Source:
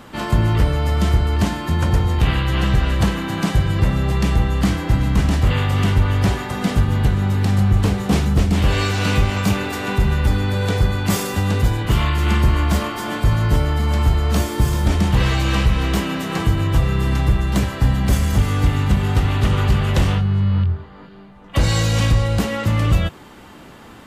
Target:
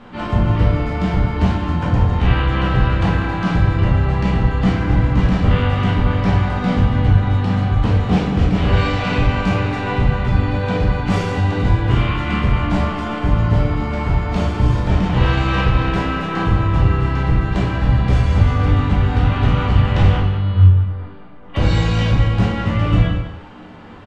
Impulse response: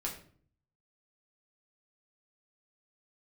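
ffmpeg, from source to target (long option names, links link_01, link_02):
-filter_complex "[0:a]lowpass=3400,asplit=2[link_01][link_02];[link_02]adelay=192.4,volume=-10dB,highshelf=frequency=4000:gain=-4.33[link_03];[link_01][link_03]amix=inputs=2:normalize=0[link_04];[1:a]atrim=start_sample=2205,afade=type=out:start_time=0.16:duration=0.01,atrim=end_sample=7497,asetrate=25578,aresample=44100[link_05];[link_04][link_05]afir=irnorm=-1:irlink=0,volume=-3.5dB"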